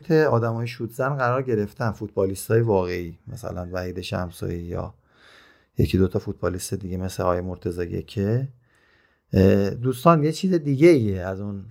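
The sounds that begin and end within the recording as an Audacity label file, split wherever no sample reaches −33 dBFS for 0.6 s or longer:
5.790000	8.470000	sound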